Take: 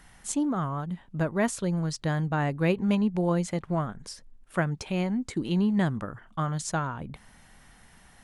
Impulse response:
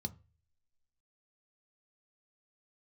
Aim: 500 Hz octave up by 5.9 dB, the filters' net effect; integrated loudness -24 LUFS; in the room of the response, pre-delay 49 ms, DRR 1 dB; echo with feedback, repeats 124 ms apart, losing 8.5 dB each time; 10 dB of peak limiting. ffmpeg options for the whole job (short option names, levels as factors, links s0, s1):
-filter_complex "[0:a]equalizer=f=500:t=o:g=7.5,alimiter=limit=0.1:level=0:latency=1,aecho=1:1:124|248|372|496:0.376|0.143|0.0543|0.0206,asplit=2[s0][s1];[1:a]atrim=start_sample=2205,adelay=49[s2];[s1][s2]afir=irnorm=-1:irlink=0,volume=1.12[s3];[s0][s3]amix=inputs=2:normalize=0,volume=0.631"